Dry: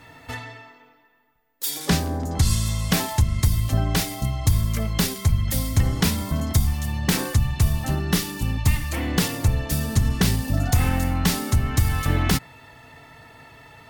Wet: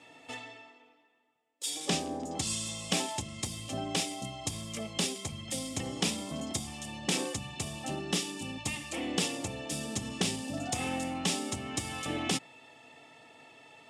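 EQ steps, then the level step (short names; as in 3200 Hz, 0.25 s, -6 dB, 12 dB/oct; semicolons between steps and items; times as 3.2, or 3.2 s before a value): speaker cabinet 370–8400 Hz, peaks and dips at 440 Hz -5 dB, 660 Hz -4 dB, 1000 Hz -10 dB, 2000 Hz -7 dB, 4300 Hz -9 dB, 6100 Hz -5 dB; bell 1500 Hz -14.5 dB 0.48 oct; 0.0 dB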